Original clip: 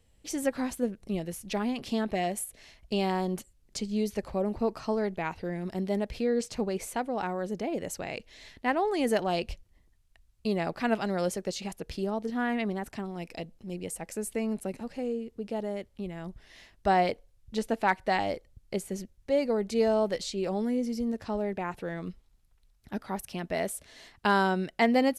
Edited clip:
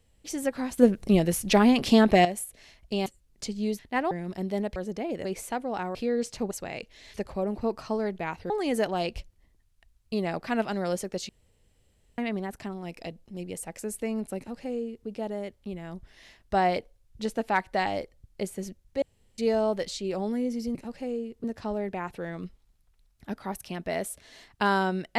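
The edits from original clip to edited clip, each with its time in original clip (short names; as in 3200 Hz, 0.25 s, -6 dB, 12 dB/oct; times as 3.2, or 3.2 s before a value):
0.78–2.25 gain +11 dB
3.06–3.39 cut
4.12–5.48 swap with 8.51–8.83
6.13–6.69 swap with 7.39–7.88
11.62–12.51 room tone
14.71–15.4 copy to 21.08
19.35–19.71 room tone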